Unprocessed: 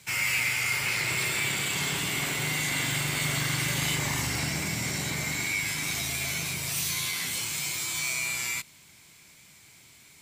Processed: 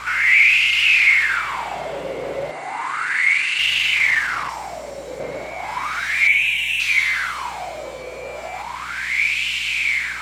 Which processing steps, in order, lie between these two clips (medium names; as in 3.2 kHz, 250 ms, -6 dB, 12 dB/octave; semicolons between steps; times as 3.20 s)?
4.49–5.20 s: tone controls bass -4 dB, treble +14 dB; gain riding; fuzz box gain 60 dB, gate -57 dBFS; 6.27–6.80 s: static phaser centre 1.3 kHz, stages 6; wah-wah 0.34 Hz 510–2800 Hz, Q 8.4; hum 60 Hz, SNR 28 dB; 2.51–3.59 s: cabinet simulation 180–10000 Hz, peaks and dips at 200 Hz -7 dB, 610 Hz -9 dB, 3.3 kHz -8 dB, 5.4 kHz -5 dB, 9 kHz +4 dB; trim +8 dB